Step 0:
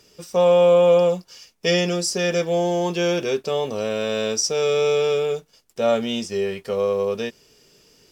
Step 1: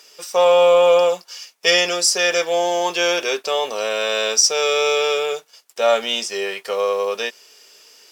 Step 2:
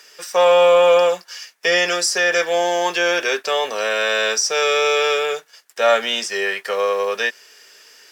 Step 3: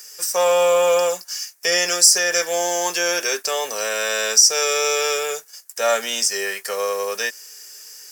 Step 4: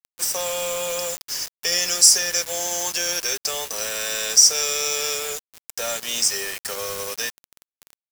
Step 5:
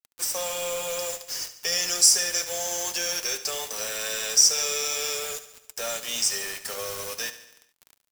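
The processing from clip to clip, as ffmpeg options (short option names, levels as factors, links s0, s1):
-af "highpass=730,acontrast=82,volume=1.19"
-filter_complex "[0:a]equalizer=f=1700:t=o:w=0.58:g=10.5,acrossover=split=290|1000[s0][s1][s2];[s2]alimiter=limit=0.316:level=0:latency=1:release=87[s3];[s0][s1][s3]amix=inputs=3:normalize=0"
-af "aexciter=amount=4.7:drive=7.1:freq=5000,volume=0.631"
-filter_complex "[0:a]acrossover=split=200|3000[s0][s1][s2];[s1]acompressor=threshold=0.0178:ratio=2.5[s3];[s0][s3][s2]amix=inputs=3:normalize=0,acrusher=bits=4:mix=0:aa=0.000001"
-filter_complex "[0:a]flanger=delay=1.3:depth=8.6:regen=-57:speed=0.38:shape=triangular,asplit=2[s0][s1];[s1]aecho=0:1:71|142|213|284|355|426:0.211|0.125|0.0736|0.0434|0.0256|0.0151[s2];[s0][s2]amix=inputs=2:normalize=0"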